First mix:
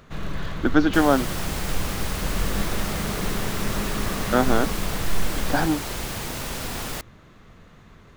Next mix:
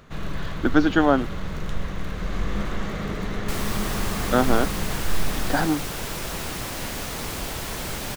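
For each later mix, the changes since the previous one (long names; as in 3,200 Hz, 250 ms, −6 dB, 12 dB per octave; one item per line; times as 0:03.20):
second sound: entry +2.55 s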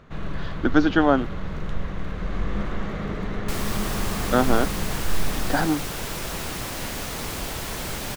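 first sound: add low-pass filter 2,400 Hz 6 dB per octave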